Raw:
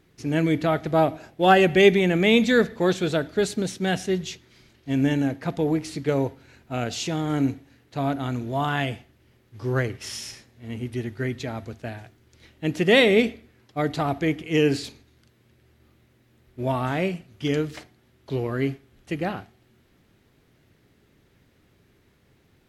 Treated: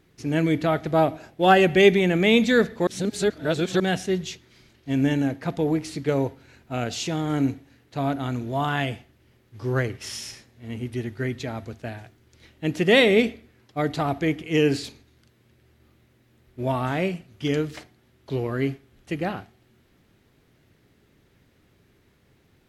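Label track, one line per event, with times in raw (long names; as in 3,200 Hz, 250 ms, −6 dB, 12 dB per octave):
2.870000	3.800000	reverse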